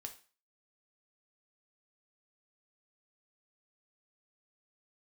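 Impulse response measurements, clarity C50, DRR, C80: 12.0 dB, 5.0 dB, 17.5 dB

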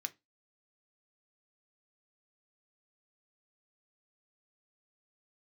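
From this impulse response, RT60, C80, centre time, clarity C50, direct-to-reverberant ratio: 0.20 s, 32.5 dB, 3 ms, 23.5 dB, 8.0 dB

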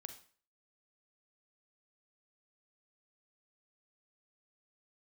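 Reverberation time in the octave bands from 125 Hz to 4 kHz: 0.45, 0.45, 0.45, 0.45, 0.45, 0.40 s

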